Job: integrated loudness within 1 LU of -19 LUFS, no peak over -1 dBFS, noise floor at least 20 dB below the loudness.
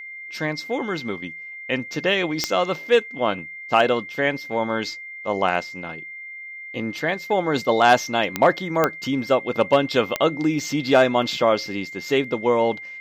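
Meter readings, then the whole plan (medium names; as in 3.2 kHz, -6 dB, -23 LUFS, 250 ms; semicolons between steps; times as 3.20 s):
clicks found 4; steady tone 2.1 kHz; tone level -34 dBFS; loudness -22.0 LUFS; peak level -5.0 dBFS; loudness target -19.0 LUFS
-> de-click; band-stop 2.1 kHz, Q 30; trim +3 dB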